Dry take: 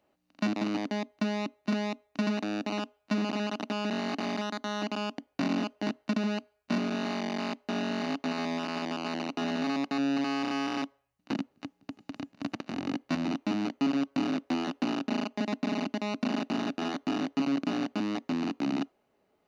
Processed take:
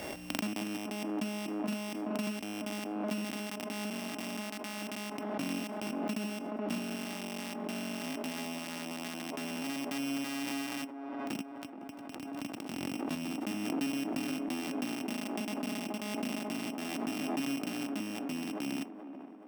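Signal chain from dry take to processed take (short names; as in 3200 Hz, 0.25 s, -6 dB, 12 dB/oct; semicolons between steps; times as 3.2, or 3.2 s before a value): sample sorter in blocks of 16 samples; band-limited delay 0.425 s, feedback 65%, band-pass 580 Hz, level -7.5 dB; backwards sustainer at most 22 dB/s; gain -7.5 dB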